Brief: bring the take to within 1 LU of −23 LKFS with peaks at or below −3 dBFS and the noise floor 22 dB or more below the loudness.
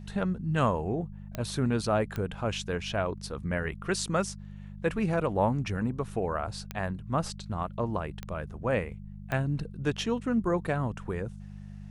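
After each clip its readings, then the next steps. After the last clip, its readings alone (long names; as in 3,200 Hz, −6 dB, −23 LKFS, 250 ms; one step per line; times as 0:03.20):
number of clicks 5; mains hum 50 Hz; hum harmonics up to 200 Hz; level of the hum −40 dBFS; integrated loudness −31.0 LKFS; sample peak −12.0 dBFS; target loudness −23.0 LKFS
→ click removal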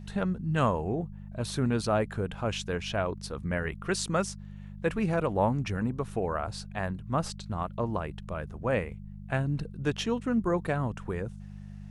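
number of clicks 0; mains hum 50 Hz; hum harmonics up to 200 Hz; level of the hum −40 dBFS
→ hum removal 50 Hz, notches 4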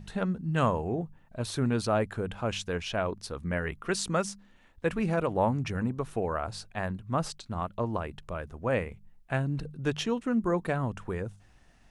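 mains hum none found; integrated loudness −31.5 LKFS; sample peak −12.5 dBFS; target loudness −23.0 LKFS
→ level +8.5 dB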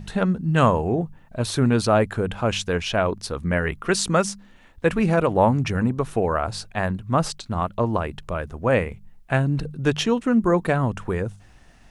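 integrated loudness −23.0 LKFS; sample peak −4.0 dBFS; background noise floor −51 dBFS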